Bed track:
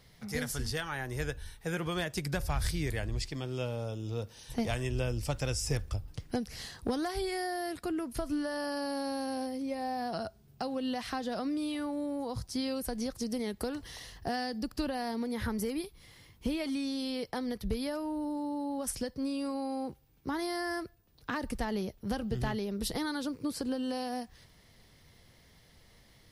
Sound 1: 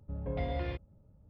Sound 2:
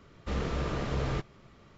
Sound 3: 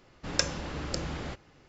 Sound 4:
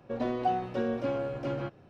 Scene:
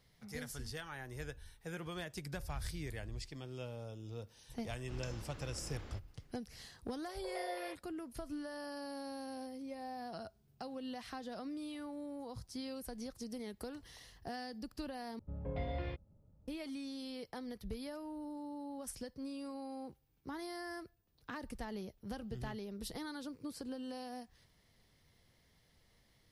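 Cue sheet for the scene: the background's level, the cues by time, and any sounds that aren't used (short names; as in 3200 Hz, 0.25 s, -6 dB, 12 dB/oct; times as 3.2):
bed track -10 dB
4.64 add 3 -15 dB + limiter -15 dBFS
6.98 add 1 -3.5 dB + steep high-pass 500 Hz
15.19 replace with 1 -5 dB
not used: 2, 4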